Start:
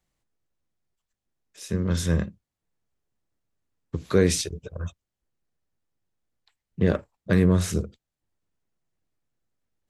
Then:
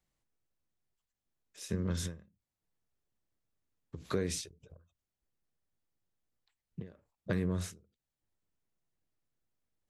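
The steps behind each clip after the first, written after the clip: compressor 4:1, threshold -25 dBFS, peak gain reduction 10 dB; ending taper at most 150 dB/s; gain -5 dB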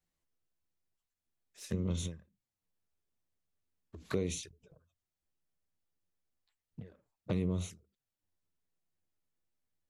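dynamic EQ 2000 Hz, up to +5 dB, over -55 dBFS, Q 1.2; envelope flanger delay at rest 11.9 ms, full sweep at -33 dBFS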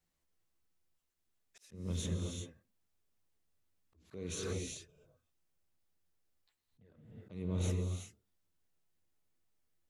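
non-linear reverb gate 0.41 s rising, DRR 4.5 dB; auto swell 0.446 s; gain +2.5 dB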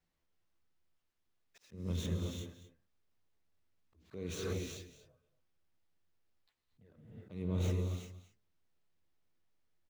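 median filter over 5 samples; echo 0.233 s -15 dB; gain +1 dB

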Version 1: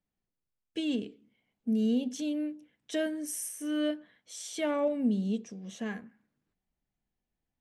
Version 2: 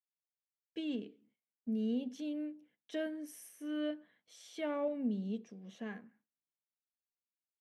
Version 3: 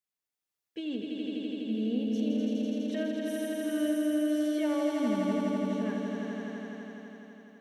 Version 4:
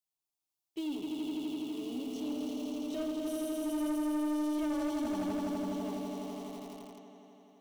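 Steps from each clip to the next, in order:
HPF 150 Hz 12 dB/oct; gate with hold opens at -56 dBFS; bell 8100 Hz -13 dB 1.2 oct; gain -6.5 dB
swelling echo 83 ms, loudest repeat 5, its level -4.5 dB; gain +2.5 dB
in parallel at -12 dB: requantised 6-bit, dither none; on the sum: fixed phaser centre 330 Hz, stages 8; soft clip -29.5 dBFS, distortion -11 dB

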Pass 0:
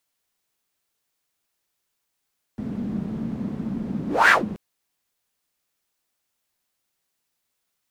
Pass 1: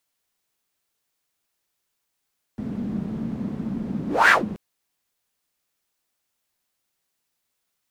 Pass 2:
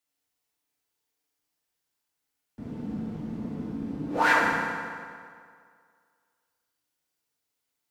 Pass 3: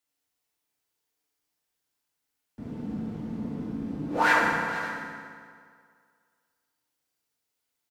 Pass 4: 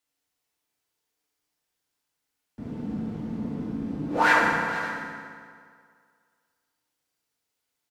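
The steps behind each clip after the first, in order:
nothing audible
FDN reverb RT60 2.1 s, low-frequency decay 0.85×, high-frequency decay 0.75×, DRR -3 dB; gain -9 dB
tapped delay 0.462/0.56 s -14/-17 dB
high shelf 11000 Hz -4.5 dB; gain +2 dB

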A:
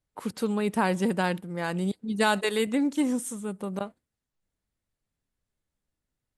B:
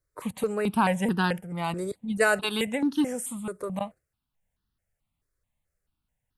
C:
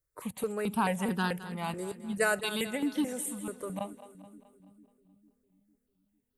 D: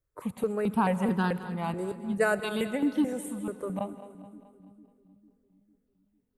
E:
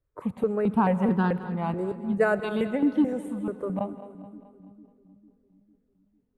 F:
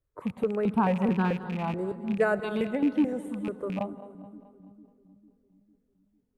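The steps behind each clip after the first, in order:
step phaser 4.6 Hz 810–2200 Hz; gain +4.5 dB
high shelf 10000 Hz +10 dB; split-band echo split 340 Hz, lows 0.451 s, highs 0.214 s, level -14 dB; gain -5.5 dB
high shelf 2000 Hz -12 dB; reverb RT60 1.6 s, pre-delay 88 ms, DRR 16 dB; gain +4.5 dB
LPF 1300 Hz 6 dB/oct; gain +4 dB
rattling part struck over -30 dBFS, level -30 dBFS; gain -2 dB

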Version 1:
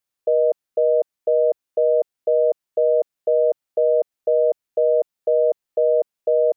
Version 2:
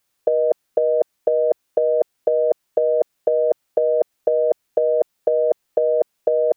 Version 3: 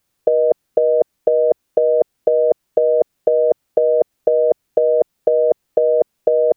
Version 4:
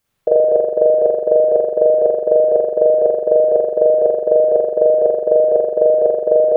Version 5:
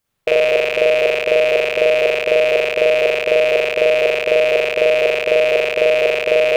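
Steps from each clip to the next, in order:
negative-ratio compressor -21 dBFS, ratio -0.5; gain +6 dB
low shelf 400 Hz +9.5 dB
spring tank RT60 1.1 s, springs 42 ms, chirp 20 ms, DRR -6.5 dB; gain -3 dB
rattling part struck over -39 dBFS, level -7 dBFS; gain -2 dB

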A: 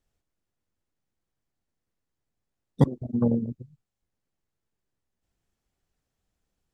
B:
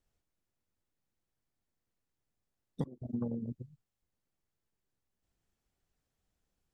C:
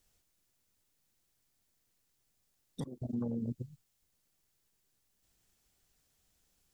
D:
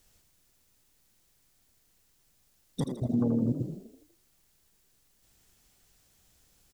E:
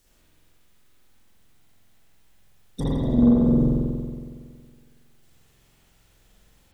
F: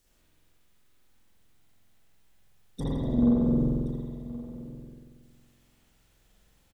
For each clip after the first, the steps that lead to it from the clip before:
compressor 20:1, threshold -29 dBFS, peak gain reduction 18 dB; gain -3 dB
high shelf 2700 Hz +11.5 dB; limiter -33 dBFS, peak gain reduction 10.5 dB; gain +4 dB
frequency-shifting echo 81 ms, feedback 51%, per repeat +36 Hz, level -9 dB; gain +8.5 dB
octaver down 2 oct, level -3 dB; spring tank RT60 1.9 s, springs 46 ms, chirp 25 ms, DRR -7.5 dB
echo 1.074 s -17 dB; gain -5.5 dB

